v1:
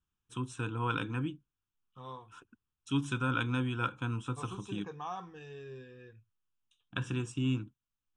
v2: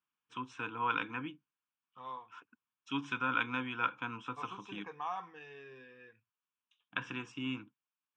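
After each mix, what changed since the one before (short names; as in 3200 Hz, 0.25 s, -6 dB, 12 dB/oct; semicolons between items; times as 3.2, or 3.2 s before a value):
master: add speaker cabinet 310–5100 Hz, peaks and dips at 370 Hz -8 dB, 550 Hz -3 dB, 1000 Hz +4 dB, 2100 Hz +10 dB, 4000 Hz -7 dB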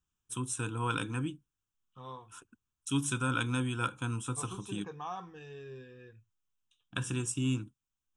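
first voice: remove LPF 3800 Hz 12 dB/oct; master: remove speaker cabinet 310–5100 Hz, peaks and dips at 370 Hz -8 dB, 550 Hz -3 dB, 1000 Hz +4 dB, 2100 Hz +10 dB, 4000 Hz -7 dB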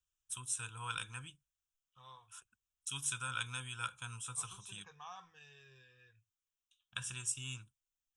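master: add passive tone stack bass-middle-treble 10-0-10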